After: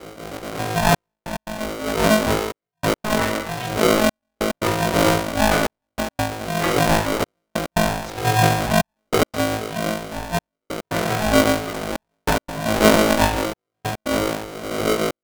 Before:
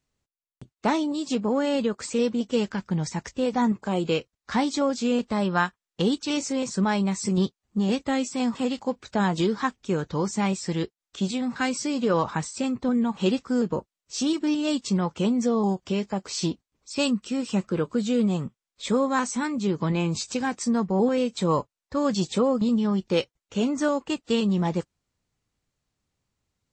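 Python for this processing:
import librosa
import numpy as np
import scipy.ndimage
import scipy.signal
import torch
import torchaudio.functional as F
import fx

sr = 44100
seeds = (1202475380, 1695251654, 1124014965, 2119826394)

y = fx.dmg_wind(x, sr, seeds[0], corner_hz=180.0, level_db=-24.0)
y = fx.high_shelf(y, sr, hz=3100.0, db=-10.5)
y = fx.auto_swell(y, sr, attack_ms=311.0)
y = fx.rev_spring(y, sr, rt60_s=1.5, pass_ms=(36,), chirp_ms=50, drr_db=-9.5)
y = fx.rotary(y, sr, hz=1.1)
y = fx.stretch_grains(y, sr, factor=0.57, grain_ms=46.0)
y = fx.step_gate(y, sr, bpm=143, pattern='xxxxxxxxx...x.x', floor_db=-60.0, edge_ms=4.5)
y = y * np.sign(np.sin(2.0 * np.pi * 430.0 * np.arange(len(y)) / sr))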